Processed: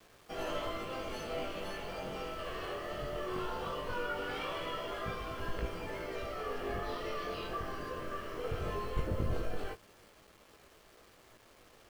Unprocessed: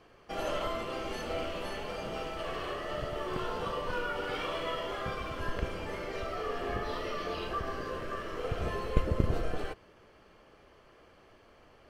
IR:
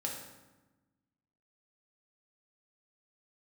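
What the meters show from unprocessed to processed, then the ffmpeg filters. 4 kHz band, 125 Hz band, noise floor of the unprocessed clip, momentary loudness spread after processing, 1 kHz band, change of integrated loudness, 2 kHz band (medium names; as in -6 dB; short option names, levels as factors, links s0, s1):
-3.0 dB, -4.0 dB, -59 dBFS, 4 LU, -3.0 dB, -3.5 dB, -3.0 dB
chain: -af "flanger=delay=18:depth=4.3:speed=0.18,asoftclip=type=tanh:threshold=0.0841,acrusher=bits=9:mix=0:aa=0.000001"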